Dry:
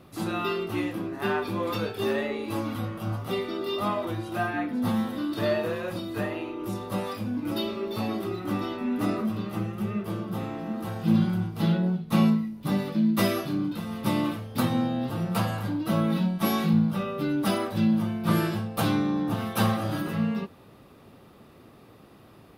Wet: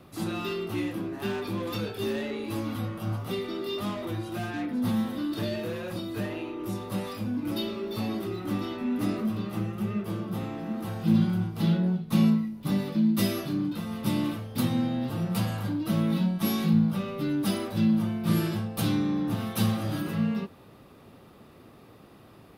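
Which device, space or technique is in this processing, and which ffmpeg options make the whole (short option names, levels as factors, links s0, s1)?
one-band saturation: -filter_complex "[0:a]acrossover=split=380|2700[s0][s1][s2];[s1]asoftclip=type=tanh:threshold=0.0133[s3];[s0][s3][s2]amix=inputs=3:normalize=0"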